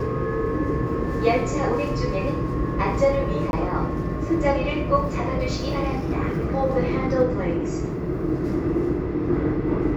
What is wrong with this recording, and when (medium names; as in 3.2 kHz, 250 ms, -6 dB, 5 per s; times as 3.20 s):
3.51–3.53 s: dropout 21 ms